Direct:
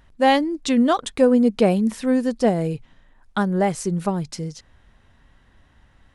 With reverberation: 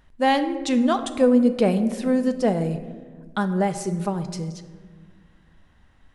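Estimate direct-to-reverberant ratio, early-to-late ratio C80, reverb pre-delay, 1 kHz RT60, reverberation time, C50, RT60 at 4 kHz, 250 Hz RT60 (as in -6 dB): 8.5 dB, 13.0 dB, 4 ms, 1.3 s, 1.5 s, 11.5 dB, 0.80 s, 2.4 s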